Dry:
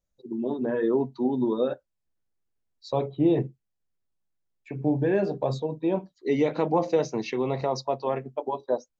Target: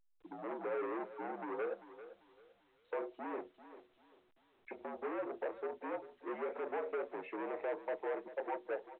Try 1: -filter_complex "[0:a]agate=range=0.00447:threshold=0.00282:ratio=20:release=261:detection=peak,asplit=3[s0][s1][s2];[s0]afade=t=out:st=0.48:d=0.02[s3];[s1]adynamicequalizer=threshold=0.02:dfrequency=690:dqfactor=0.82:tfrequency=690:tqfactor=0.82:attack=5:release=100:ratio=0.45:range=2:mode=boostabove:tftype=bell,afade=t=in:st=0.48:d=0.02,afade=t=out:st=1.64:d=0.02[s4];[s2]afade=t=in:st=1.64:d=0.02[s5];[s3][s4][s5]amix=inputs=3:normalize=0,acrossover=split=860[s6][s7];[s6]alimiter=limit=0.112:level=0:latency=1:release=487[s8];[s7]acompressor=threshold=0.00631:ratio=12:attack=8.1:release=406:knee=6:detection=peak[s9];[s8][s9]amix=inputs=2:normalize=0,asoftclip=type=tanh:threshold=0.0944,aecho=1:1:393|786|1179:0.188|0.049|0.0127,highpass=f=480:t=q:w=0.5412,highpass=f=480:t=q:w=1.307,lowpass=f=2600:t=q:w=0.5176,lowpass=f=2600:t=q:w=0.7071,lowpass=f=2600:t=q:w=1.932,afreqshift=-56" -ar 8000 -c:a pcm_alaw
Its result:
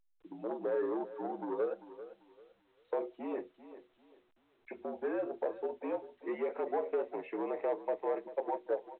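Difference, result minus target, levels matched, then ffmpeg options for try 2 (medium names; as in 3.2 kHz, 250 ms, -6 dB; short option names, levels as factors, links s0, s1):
saturation: distortion -12 dB
-filter_complex "[0:a]agate=range=0.00447:threshold=0.00282:ratio=20:release=261:detection=peak,asplit=3[s0][s1][s2];[s0]afade=t=out:st=0.48:d=0.02[s3];[s1]adynamicequalizer=threshold=0.02:dfrequency=690:dqfactor=0.82:tfrequency=690:tqfactor=0.82:attack=5:release=100:ratio=0.45:range=2:mode=boostabove:tftype=bell,afade=t=in:st=0.48:d=0.02,afade=t=out:st=1.64:d=0.02[s4];[s2]afade=t=in:st=1.64:d=0.02[s5];[s3][s4][s5]amix=inputs=3:normalize=0,acrossover=split=860[s6][s7];[s6]alimiter=limit=0.112:level=0:latency=1:release=487[s8];[s7]acompressor=threshold=0.00631:ratio=12:attack=8.1:release=406:knee=6:detection=peak[s9];[s8][s9]amix=inputs=2:normalize=0,asoftclip=type=tanh:threshold=0.0266,aecho=1:1:393|786|1179:0.188|0.049|0.0127,highpass=f=480:t=q:w=0.5412,highpass=f=480:t=q:w=1.307,lowpass=f=2600:t=q:w=0.5176,lowpass=f=2600:t=q:w=0.7071,lowpass=f=2600:t=q:w=1.932,afreqshift=-56" -ar 8000 -c:a pcm_alaw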